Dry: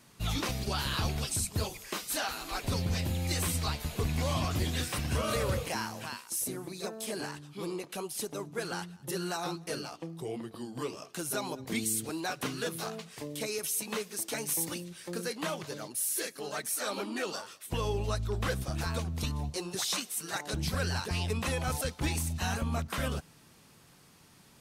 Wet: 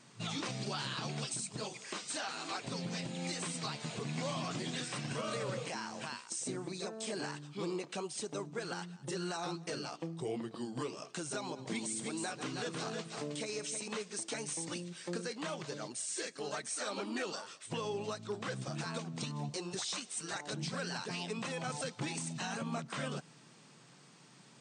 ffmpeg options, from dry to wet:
-filter_complex "[0:a]asettb=1/sr,asplit=3[s0][s1][s2];[s0]atrim=end=11.414[s3];[s1]atrim=start=11.41:end=13.88,asetpts=PTS-STARTPTS,afade=t=in:d=0.004:c=qsin,afade=t=out:st=2.466:d=0.004:c=qsin,aecho=1:1:139|316:0.178|0.398,atrim=end_sample=108927[s4];[s2]atrim=start=13.876[s5];[s3][s4]acrossfade=d=0.004:c1=hsin:c2=qsin[s6];[s6][s5]acrossfade=d=0.004:c1=qsin:c2=hsin,afftfilt=real='re*between(b*sr/4096,110,9100)':imag='im*between(b*sr/4096,110,9100)':win_size=4096:overlap=0.75,alimiter=level_in=1.68:limit=0.0631:level=0:latency=1:release=211,volume=0.596"

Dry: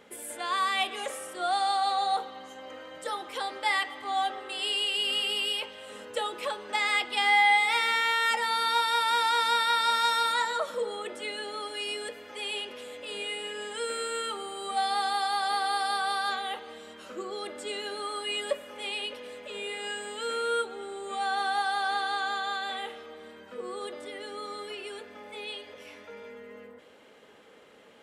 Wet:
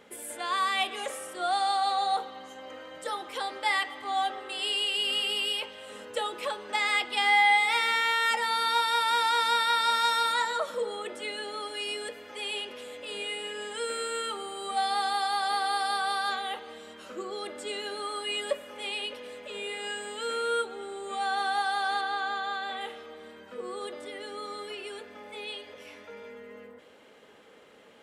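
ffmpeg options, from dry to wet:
-filter_complex "[0:a]asettb=1/sr,asplit=3[s0][s1][s2];[s0]atrim=end=22.014[s3];[s1]atrim=start=22.01:end=22.81,asetpts=PTS-STARTPTS,afade=t=in:d=0.004:c=qsin,afade=t=out:st=0.796:d=0.004:c=qsin,lowpass=f=3400:p=1[s4];[s2]atrim=start=22.806[s5];[s3][s4]acrossfade=d=0.004:c1=hsin:c2=qsin[s6];[s6][s5]acrossfade=d=0.004:c1=qsin:c2=hsin"

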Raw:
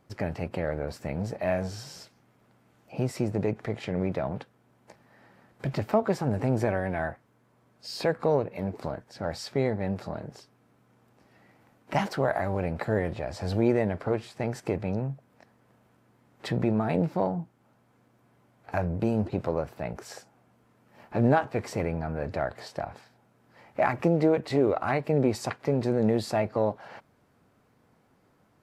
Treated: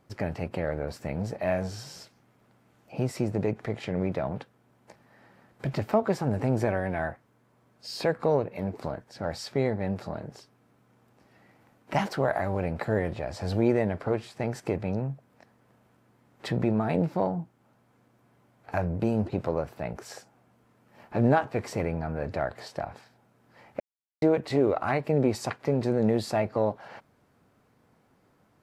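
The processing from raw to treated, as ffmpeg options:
-filter_complex "[0:a]asplit=3[s0][s1][s2];[s0]atrim=end=23.8,asetpts=PTS-STARTPTS,afade=t=out:st=23.796:d=0.004:c=hsin[s3];[s1]atrim=start=23.8:end=24.22,asetpts=PTS-STARTPTS,volume=0[s4];[s2]atrim=start=24.22,asetpts=PTS-STARTPTS,afade=t=in:d=0.004:c=hsin[s5];[s3][s4][s5]concat=n=3:v=0:a=1"

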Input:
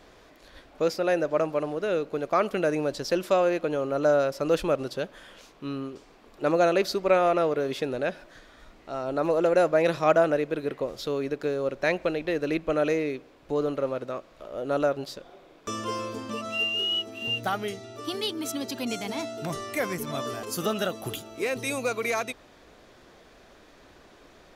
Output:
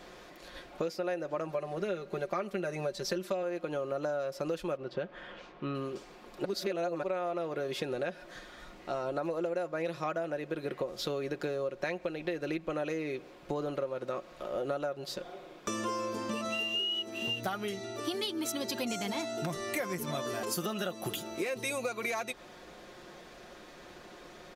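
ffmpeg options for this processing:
-filter_complex "[0:a]asettb=1/sr,asplit=3[s0][s1][s2];[s0]atrim=end=1.474[s3];[s1]atrim=start=1.47:end=3.43,asetpts=PTS-STARTPTS,afade=t=in:d=0.004:c=qsin,afade=t=out:st=1.956:d=0.004:c=qsin,aecho=1:1:5.1:0.65,atrim=end_sample=86436[s4];[s2]atrim=start=3.426[s5];[s3][s4]acrossfade=d=0.004:c1=hsin:c2=qsin[s6];[s6][s5]acrossfade=d=0.004:c1=qsin:c2=hsin,asettb=1/sr,asplit=3[s7][s8][s9];[s7]atrim=end=4.774[s10];[s8]atrim=start=4.77:end=5.75,asetpts=PTS-STARTPTS,afade=t=in:d=0.004:c=qsin,afade=t=out:st=0.976:d=0.004:c=qsin,lowpass=2600[s11];[s9]atrim=start=5.746[s12];[s10][s11]acrossfade=d=0.004:c1=hsin:c2=qsin[s13];[s13][s12]acrossfade=d=0.004:c1=qsin:c2=hsin,asplit=3[s14][s15][s16];[s14]atrim=end=6.452[s17];[s15]atrim=start=6.448:end=7.032,asetpts=PTS-STARTPTS,areverse[s18];[s16]atrim=start=7.028[s19];[s17][s18]acrossfade=d=0.004:c1=hsin:c2=hsin[s20];[s20][s19]acrossfade=d=0.004:c1=hsin:c2=hsin,aecho=1:1:5.6:0.47,acompressor=threshold=0.0224:ratio=12,lowshelf=f=63:g=-8,volume=1.33"

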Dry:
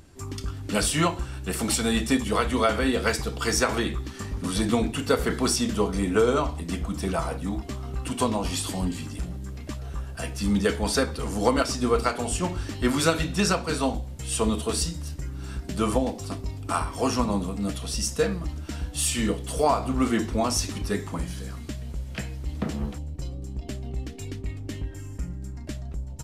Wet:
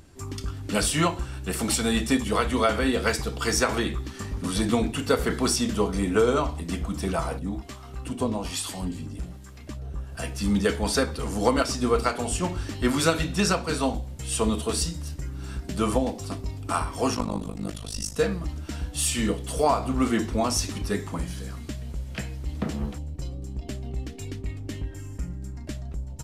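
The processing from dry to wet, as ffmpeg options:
-filter_complex "[0:a]asettb=1/sr,asplit=3[s0][s1][s2];[s0]atrim=end=7.394[s3];[s1]atrim=start=7.39:end=10.12,asetpts=PTS-STARTPTS,afade=t=in:d=0.004:c=qsin,afade=t=out:st=2.726:d=0.004:c=qsin,acrossover=split=690[s4][s5];[s4]aeval=exprs='val(0)*(1-0.7/2+0.7/2*cos(2*PI*1.2*n/s))':c=same[s6];[s5]aeval=exprs='val(0)*(1-0.7/2-0.7/2*cos(2*PI*1.2*n/s))':c=same[s7];[s6][s7]amix=inputs=2:normalize=0[s8];[s2]atrim=start=10.116[s9];[s3][s8]acrossfade=d=0.004:c1=hsin:c2=qsin[s10];[s10][s9]acrossfade=d=0.004:c1=qsin:c2=hsin,asplit=3[s11][s12][s13];[s11]afade=t=out:st=17.14:d=0.02[s14];[s12]tremolo=f=51:d=0.947,afade=t=in:st=17.14:d=0.02,afade=t=out:st=18.15:d=0.02[s15];[s13]afade=t=in:st=18.15:d=0.02[s16];[s14][s15][s16]amix=inputs=3:normalize=0"

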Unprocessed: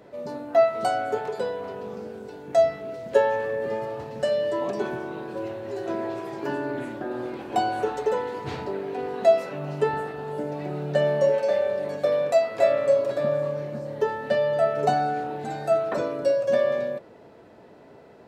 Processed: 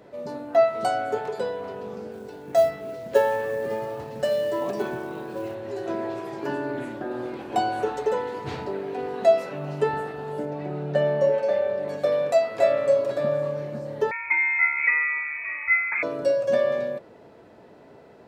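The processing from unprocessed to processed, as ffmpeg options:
-filter_complex "[0:a]asettb=1/sr,asplit=3[s0][s1][s2];[s0]atrim=end=2.124[s3];[s1]atrim=start=2.12:end=5.55,asetpts=PTS-STARTPTS,afade=t=in:d=0.004:c=qsin,afade=t=out:st=3.426:d=0.004:c=qsin,acrusher=bits=7:mode=log:mix=0:aa=0.000001[s4];[s2]atrim=start=5.546[s5];[s3][s4]acrossfade=d=0.004:c1=hsin:c2=qsin[s6];[s6][s5]acrossfade=d=0.004:c1=qsin:c2=hsin,asettb=1/sr,asplit=3[s7][s8][s9];[s7]atrim=end=10.454[s10];[s8]atrim=start=10.45:end=11.88,asetpts=PTS-STARTPTS,afade=t=in:d=0.004:c=qsin,afade=t=out:st=1.426:d=0.004:c=qsin,highshelf=f=4100:g=-9.5[s11];[s9]atrim=start=11.876[s12];[s10][s11]acrossfade=d=0.004:c1=hsin:c2=qsin[s13];[s13][s12]acrossfade=d=0.004:c1=qsin:c2=hsin,asettb=1/sr,asplit=3[s14][s15][s16];[s14]atrim=end=14.114[s17];[s15]atrim=start=14.11:end=16.03,asetpts=PTS-STARTPTS,afade=t=in:d=0.004:c=qsin,afade=t=out:st=1.916:d=0.004:c=qsin,lowpass=f=2300:t=q:w=0.5098,lowpass=f=2300:t=q:w=0.6013,lowpass=f=2300:t=q:w=0.9,lowpass=f=2300:t=q:w=2.563,afreqshift=-2700[s18];[s16]atrim=start=16.026[s19];[s17][s18]acrossfade=d=0.004:c1=hsin:c2=qsin[s20];[s20][s19]acrossfade=d=0.004:c1=qsin:c2=hsin"

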